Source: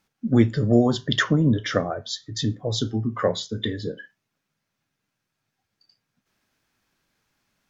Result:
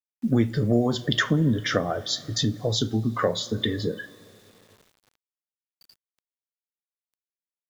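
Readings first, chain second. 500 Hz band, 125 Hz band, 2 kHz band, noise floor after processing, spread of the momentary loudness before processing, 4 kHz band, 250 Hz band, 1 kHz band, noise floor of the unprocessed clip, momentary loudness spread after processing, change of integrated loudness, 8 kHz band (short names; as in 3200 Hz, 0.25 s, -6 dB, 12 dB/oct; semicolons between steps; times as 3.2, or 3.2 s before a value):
-1.5 dB, -1.5 dB, -0.5 dB, under -85 dBFS, 11 LU, +1.5 dB, -2.5 dB, -0.5 dB, -81 dBFS, 6 LU, -1.5 dB, n/a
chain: two-slope reverb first 0.3 s, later 3.6 s, from -18 dB, DRR 15 dB; compressor 2:1, threshold -28 dBFS, peak gain reduction 9.5 dB; requantised 10-bit, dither none; gain +4.5 dB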